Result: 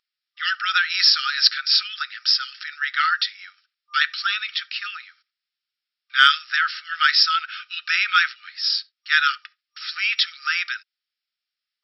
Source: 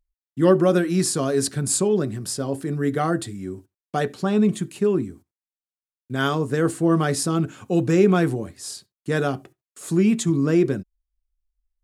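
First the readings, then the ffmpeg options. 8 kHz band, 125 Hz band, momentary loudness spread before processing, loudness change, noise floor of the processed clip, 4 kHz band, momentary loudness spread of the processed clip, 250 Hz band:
under -15 dB, under -40 dB, 15 LU, +2.0 dB, under -85 dBFS, +17.0 dB, 14 LU, under -40 dB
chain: -af "afftfilt=real='re*between(b*sr/4096,1200,5600)':imag='im*between(b*sr/4096,1200,5600)':win_size=4096:overlap=0.75,highshelf=f=2.1k:g=9.5,acontrast=23,volume=4.5dB"

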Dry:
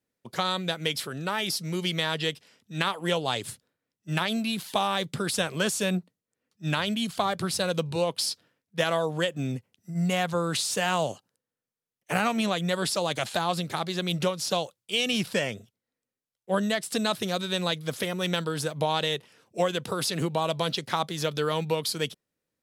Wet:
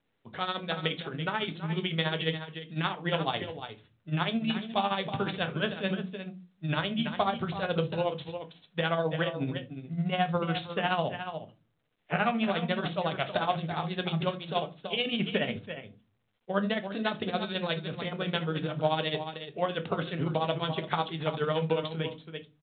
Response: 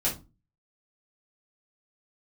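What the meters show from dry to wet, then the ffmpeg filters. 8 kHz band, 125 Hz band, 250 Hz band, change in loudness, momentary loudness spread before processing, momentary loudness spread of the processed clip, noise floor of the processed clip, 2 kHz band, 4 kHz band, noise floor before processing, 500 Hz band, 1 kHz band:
under -40 dB, -0.5 dB, -2.0 dB, -3.0 dB, 7 LU, 9 LU, -72 dBFS, -2.5 dB, -5.0 dB, under -85 dBFS, -2.5 dB, -1.5 dB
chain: -filter_complex "[0:a]aecho=1:1:328:0.335,tremolo=f=14:d=0.73,asplit=2[a][b];[1:a]atrim=start_sample=2205,lowpass=3.9k[c];[b][c]afir=irnorm=-1:irlink=0,volume=-13.5dB[d];[a][d]amix=inputs=2:normalize=0,volume=-1.5dB" -ar 8000 -c:a pcm_mulaw

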